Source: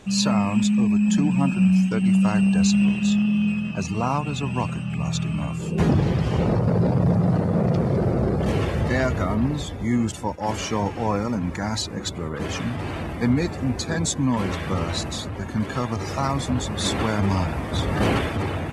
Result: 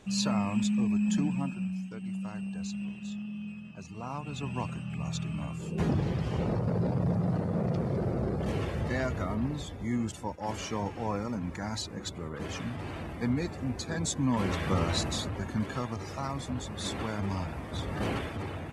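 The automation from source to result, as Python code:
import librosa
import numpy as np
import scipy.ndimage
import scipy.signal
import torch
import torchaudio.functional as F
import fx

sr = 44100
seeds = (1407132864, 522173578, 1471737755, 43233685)

y = fx.gain(x, sr, db=fx.line((1.23, -8.0), (1.75, -18.0), (3.89, -18.0), (4.44, -9.0), (13.89, -9.0), (14.67, -3.0), (15.21, -3.0), (16.12, -11.0)))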